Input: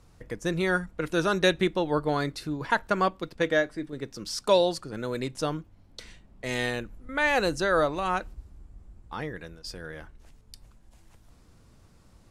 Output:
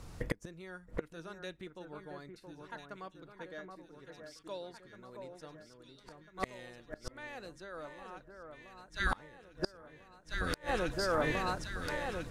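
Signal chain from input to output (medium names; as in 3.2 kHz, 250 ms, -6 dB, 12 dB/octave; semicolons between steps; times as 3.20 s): echo whose repeats swap between lows and highs 673 ms, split 1.7 kHz, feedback 73%, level -5 dB; inverted gate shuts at -27 dBFS, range -30 dB; trim +7.5 dB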